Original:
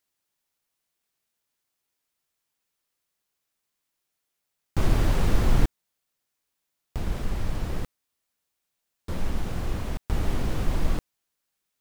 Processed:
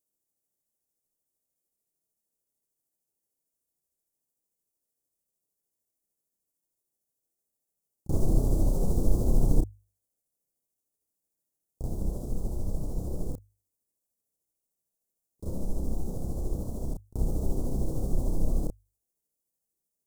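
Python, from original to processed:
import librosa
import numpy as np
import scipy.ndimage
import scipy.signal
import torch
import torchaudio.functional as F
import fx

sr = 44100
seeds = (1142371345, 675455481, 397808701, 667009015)

y = fx.stretch_grains(x, sr, factor=1.7, grain_ms=151.0)
y = scipy.signal.sosfilt(scipy.signal.cheby1(2, 1.0, [530.0, 7900.0], 'bandstop', fs=sr, output='sos'), y)
y = fx.hum_notches(y, sr, base_hz=50, count=2)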